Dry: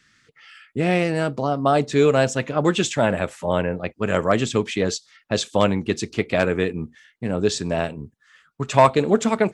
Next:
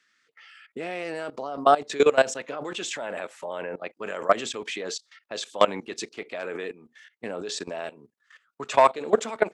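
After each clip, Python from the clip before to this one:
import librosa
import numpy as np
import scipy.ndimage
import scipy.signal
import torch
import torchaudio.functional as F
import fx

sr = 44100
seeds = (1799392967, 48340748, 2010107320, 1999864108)

y = scipy.signal.sosfilt(scipy.signal.butter(2, 430.0, 'highpass', fs=sr, output='sos'), x)
y = fx.high_shelf(y, sr, hz=5500.0, db=-4.5)
y = fx.level_steps(y, sr, step_db=18)
y = y * 10.0 ** (3.5 / 20.0)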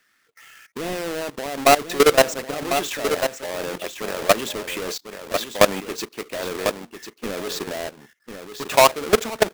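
y = fx.halfwave_hold(x, sr)
y = y + 10.0 ** (-8.5 / 20.0) * np.pad(y, (int(1047 * sr / 1000.0), 0))[:len(y)]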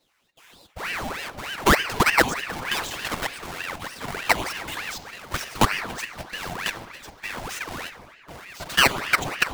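y = fx.env_flanger(x, sr, rest_ms=6.9, full_db=-15.0)
y = fx.room_shoebox(y, sr, seeds[0], volume_m3=3800.0, walls='mixed', distance_m=0.93)
y = fx.ring_lfo(y, sr, carrier_hz=1300.0, swing_pct=80, hz=3.3)
y = y * 10.0 ** (1.0 / 20.0)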